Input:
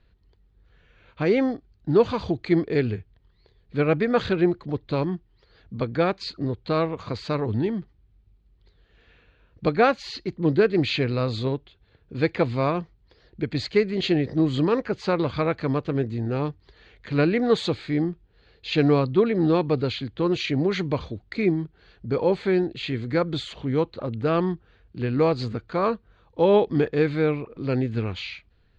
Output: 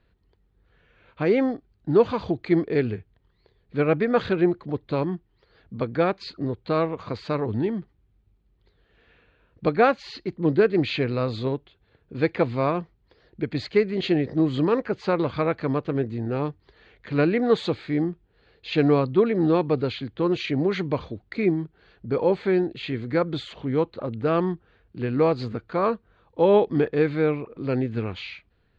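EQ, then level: low shelf 100 Hz -8.5 dB; high shelf 4600 Hz -11.5 dB; +1.0 dB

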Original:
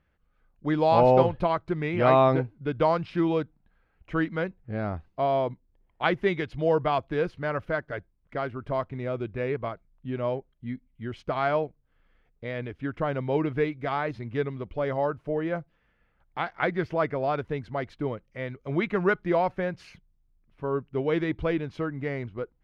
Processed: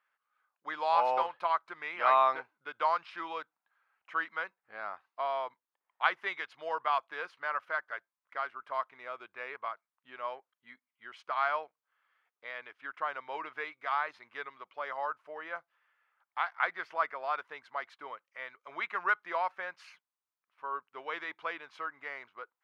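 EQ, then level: resonant high-pass 1100 Hz, resonance Q 2.1; -5.0 dB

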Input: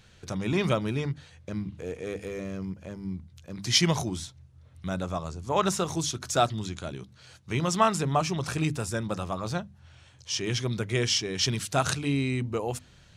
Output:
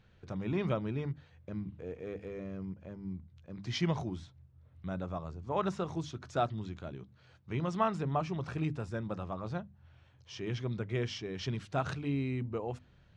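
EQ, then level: tape spacing loss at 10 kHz 22 dB; high shelf 6000 Hz -6.5 dB; -5.5 dB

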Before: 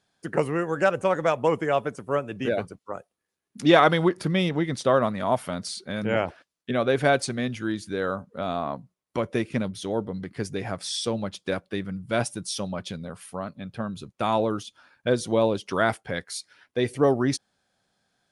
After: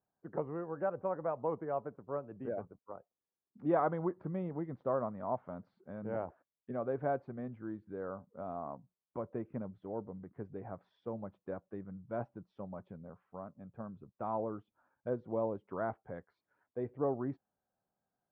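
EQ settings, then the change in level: ladder low-pass 1300 Hz, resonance 25%; -8.0 dB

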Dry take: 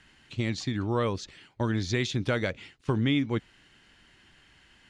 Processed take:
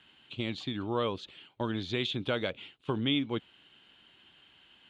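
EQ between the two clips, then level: HPF 250 Hz 6 dB/oct; bell 1900 Hz -9 dB 0.57 oct; resonant high shelf 4300 Hz -9 dB, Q 3; -1.5 dB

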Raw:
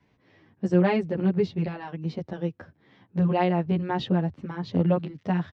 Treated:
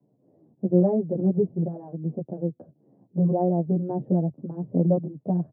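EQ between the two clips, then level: elliptic band-pass 130–660 Hz, stop band 70 dB; +2.0 dB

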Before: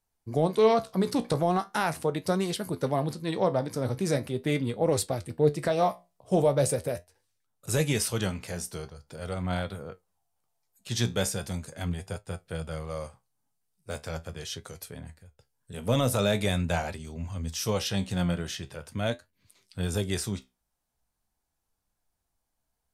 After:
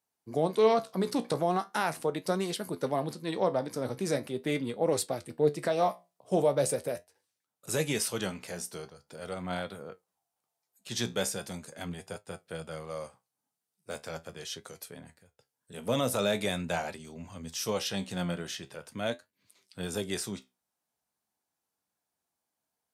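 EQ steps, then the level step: HPF 190 Hz 12 dB/oct; -2.0 dB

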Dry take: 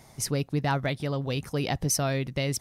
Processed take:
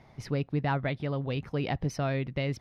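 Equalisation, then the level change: air absorption 320 m; bell 2200 Hz +2 dB; high shelf 5400 Hz +5.5 dB; -1.5 dB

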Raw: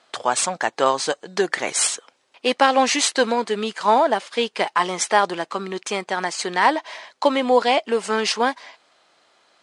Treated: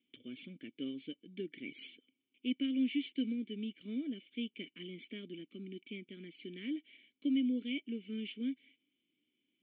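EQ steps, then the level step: vocal tract filter i; Butterworth band-stop 850 Hz, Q 0.59; -4.5 dB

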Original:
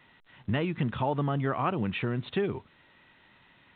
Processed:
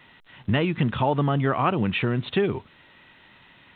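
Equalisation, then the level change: bell 3000 Hz +2.5 dB; +6.0 dB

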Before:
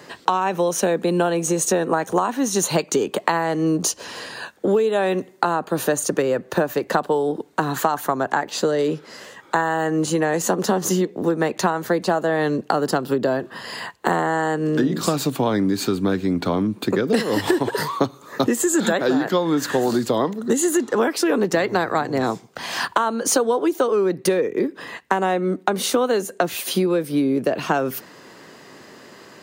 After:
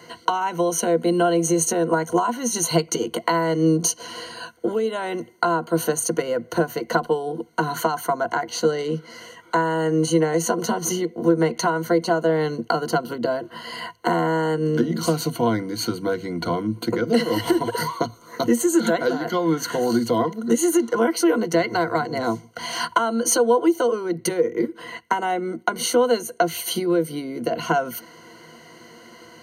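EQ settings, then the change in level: ripple EQ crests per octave 1.9, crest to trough 17 dB; -4.5 dB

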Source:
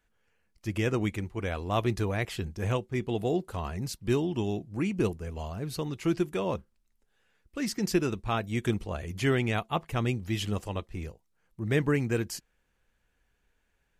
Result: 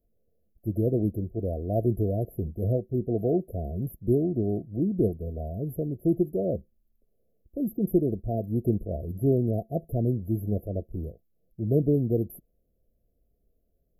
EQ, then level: brick-wall FIR band-stop 720–11000 Hz; +3.5 dB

